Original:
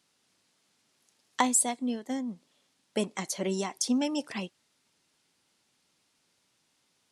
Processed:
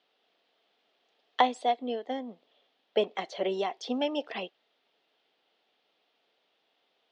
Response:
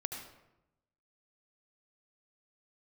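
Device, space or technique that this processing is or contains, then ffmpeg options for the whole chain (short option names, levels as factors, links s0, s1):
phone earpiece: -af "highpass=400,equalizer=f=450:t=q:w=4:g=7,equalizer=f=700:t=q:w=4:g=8,equalizer=f=1000:t=q:w=4:g=-4,equalizer=f=1500:t=q:w=4:g=-3,equalizer=f=2200:t=q:w=4:g=-3,equalizer=f=3300:t=q:w=4:g=4,lowpass=f=3600:w=0.5412,lowpass=f=3600:w=1.3066,volume=1.26"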